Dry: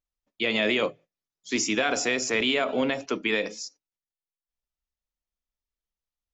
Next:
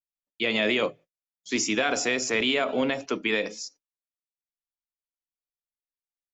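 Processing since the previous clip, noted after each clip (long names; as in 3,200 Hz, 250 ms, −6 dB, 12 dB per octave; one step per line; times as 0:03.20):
noise gate with hold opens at −50 dBFS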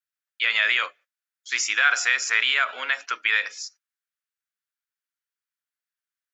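high-pass with resonance 1,500 Hz, resonance Q 3.3
level +1.5 dB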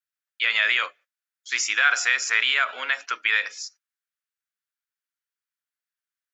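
no processing that can be heard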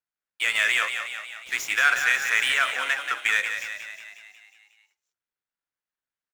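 running median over 9 samples
echo with shifted repeats 181 ms, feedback 59%, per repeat +44 Hz, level −7.5 dB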